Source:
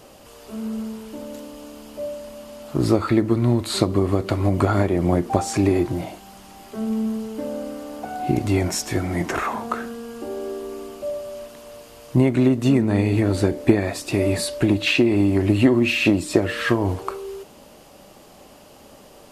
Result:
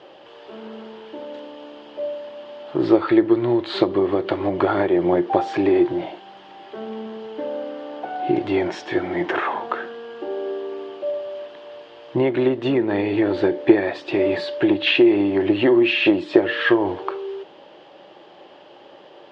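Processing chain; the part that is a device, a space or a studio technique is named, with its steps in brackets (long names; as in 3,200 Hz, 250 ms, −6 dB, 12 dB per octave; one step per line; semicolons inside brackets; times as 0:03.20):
kitchen radio (loudspeaker in its box 190–4,000 Hz, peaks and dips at 230 Hz −10 dB, 350 Hz +9 dB, 540 Hz +5 dB, 860 Hz +7 dB, 1,700 Hz +7 dB, 3,200 Hz +8 dB)
level −2 dB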